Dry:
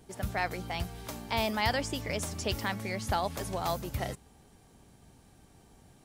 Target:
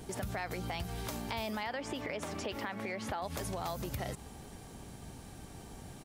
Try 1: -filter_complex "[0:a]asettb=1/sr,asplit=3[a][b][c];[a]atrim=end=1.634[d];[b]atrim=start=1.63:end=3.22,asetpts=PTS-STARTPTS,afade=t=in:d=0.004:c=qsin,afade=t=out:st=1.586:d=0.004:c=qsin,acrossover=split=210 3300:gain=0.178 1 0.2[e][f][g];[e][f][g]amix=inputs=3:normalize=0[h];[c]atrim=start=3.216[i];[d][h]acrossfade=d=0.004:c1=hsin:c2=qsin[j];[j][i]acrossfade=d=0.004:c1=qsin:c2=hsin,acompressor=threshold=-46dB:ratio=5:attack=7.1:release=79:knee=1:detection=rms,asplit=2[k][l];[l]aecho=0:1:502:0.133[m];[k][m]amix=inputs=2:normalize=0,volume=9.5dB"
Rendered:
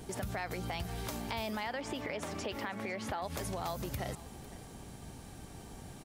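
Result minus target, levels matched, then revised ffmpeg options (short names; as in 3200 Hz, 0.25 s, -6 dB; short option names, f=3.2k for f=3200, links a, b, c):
echo-to-direct +8.5 dB
-filter_complex "[0:a]asettb=1/sr,asplit=3[a][b][c];[a]atrim=end=1.634[d];[b]atrim=start=1.63:end=3.22,asetpts=PTS-STARTPTS,afade=t=in:d=0.004:c=qsin,afade=t=out:st=1.586:d=0.004:c=qsin,acrossover=split=210 3300:gain=0.178 1 0.2[e][f][g];[e][f][g]amix=inputs=3:normalize=0[h];[c]atrim=start=3.216[i];[d][h]acrossfade=d=0.004:c1=hsin:c2=qsin[j];[j][i]acrossfade=d=0.004:c1=qsin:c2=hsin,acompressor=threshold=-46dB:ratio=5:attack=7.1:release=79:knee=1:detection=rms,asplit=2[k][l];[l]aecho=0:1:502:0.0501[m];[k][m]amix=inputs=2:normalize=0,volume=9.5dB"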